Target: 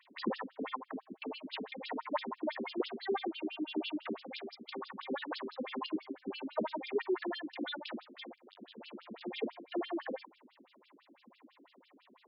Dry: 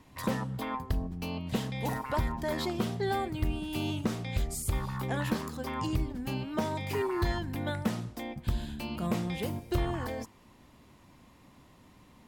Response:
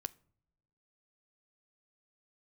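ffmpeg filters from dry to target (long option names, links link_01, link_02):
-filter_complex "[0:a]asettb=1/sr,asplit=3[link_01][link_02][link_03];[link_01]atrim=end=8.244[link_04];[link_02]atrim=start=8.24:end=9.21,asetpts=PTS-STARTPTS,afade=type=in:duration=0.004:curve=qsin,afade=type=out:start_time=0.966:duration=0.004:curve=qsin,aeval=exprs='(tanh(126*val(0)+0.8)-tanh(0.8))/126':channel_layout=same[link_05];[link_03]atrim=start=9.206[link_06];[link_04][link_05]acrossfade=duration=0.004:curve1=hsin:curve2=qsin[link_07];[link_07][link_06]acrossfade=duration=0.004:curve1=qsin:curve2=hsin,afftfilt=real='re*between(b*sr/1024,290*pow(3900/290,0.5+0.5*sin(2*PI*6*pts/sr))/1.41,290*pow(3900/290,0.5+0.5*sin(2*PI*6*pts/sr))*1.41)':imag='im*between(b*sr/1024,290*pow(3900/290,0.5+0.5*sin(2*PI*6*pts/sr))/1.41,290*pow(3900/290,0.5+0.5*sin(2*PI*6*pts/sr))*1.41)':win_size=1024:overlap=0.75,volume=4dB"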